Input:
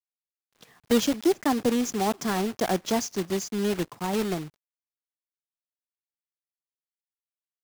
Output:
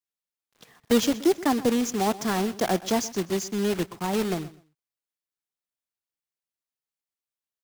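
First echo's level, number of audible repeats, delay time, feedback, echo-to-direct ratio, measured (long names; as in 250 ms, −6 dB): −18.0 dB, 2, 125 ms, 21%, −18.0 dB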